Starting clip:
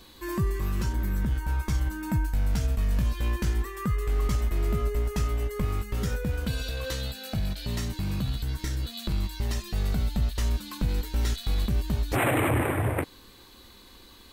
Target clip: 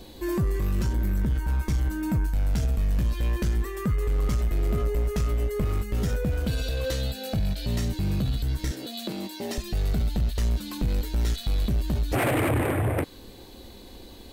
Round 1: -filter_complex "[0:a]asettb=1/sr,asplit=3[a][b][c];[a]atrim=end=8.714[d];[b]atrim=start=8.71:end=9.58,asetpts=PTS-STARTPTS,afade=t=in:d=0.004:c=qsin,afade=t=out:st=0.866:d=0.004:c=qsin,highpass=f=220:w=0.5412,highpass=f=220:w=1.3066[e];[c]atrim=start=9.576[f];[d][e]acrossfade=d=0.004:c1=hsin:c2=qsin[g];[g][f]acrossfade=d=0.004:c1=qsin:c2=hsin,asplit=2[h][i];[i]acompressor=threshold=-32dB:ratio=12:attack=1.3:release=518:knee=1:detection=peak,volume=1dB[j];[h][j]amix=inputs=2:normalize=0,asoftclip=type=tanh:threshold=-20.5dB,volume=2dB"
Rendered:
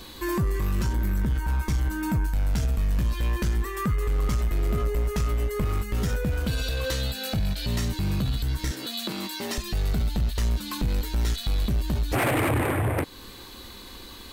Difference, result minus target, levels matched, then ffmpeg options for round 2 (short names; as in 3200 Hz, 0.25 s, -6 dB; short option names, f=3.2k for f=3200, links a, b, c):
1000 Hz band +2.5 dB
-filter_complex "[0:a]asettb=1/sr,asplit=3[a][b][c];[a]atrim=end=8.714[d];[b]atrim=start=8.71:end=9.58,asetpts=PTS-STARTPTS,afade=t=in:d=0.004:c=qsin,afade=t=out:st=0.866:d=0.004:c=qsin,highpass=f=220:w=0.5412,highpass=f=220:w=1.3066[e];[c]atrim=start=9.576[f];[d][e]acrossfade=d=0.004:c1=hsin:c2=qsin[g];[g][f]acrossfade=d=0.004:c1=qsin:c2=hsin,asplit=2[h][i];[i]acompressor=threshold=-32dB:ratio=12:attack=1.3:release=518:knee=1:detection=peak,lowpass=f=760:t=q:w=1.9,volume=1dB[j];[h][j]amix=inputs=2:normalize=0,asoftclip=type=tanh:threshold=-20.5dB,volume=2dB"